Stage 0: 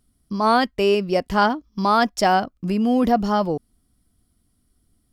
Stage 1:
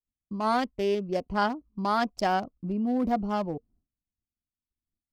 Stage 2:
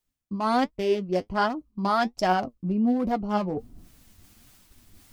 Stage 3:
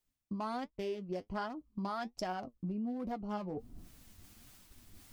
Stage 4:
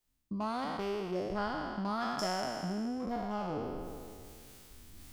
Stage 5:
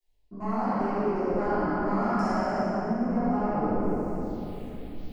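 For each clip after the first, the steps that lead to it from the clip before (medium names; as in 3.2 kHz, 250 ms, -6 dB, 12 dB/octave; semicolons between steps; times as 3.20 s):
local Wiener filter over 25 samples; expander -50 dBFS; band-stop 460 Hz, Q 12; trim -7.5 dB
reverse; upward compressor, threshold -28 dBFS; reverse; flange 1.3 Hz, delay 5.3 ms, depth 5.9 ms, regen +50%; trim +6 dB
compression 6:1, threshold -33 dBFS, peak gain reduction 14.5 dB; trim -3 dB
spectral sustain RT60 2.17 s
saturation -31 dBFS, distortion -16 dB; touch-sensitive phaser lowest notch 210 Hz, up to 3.5 kHz, full sweep at -44.5 dBFS; reverberation RT60 3.1 s, pre-delay 3 ms, DRR -17.5 dB; trim -7.5 dB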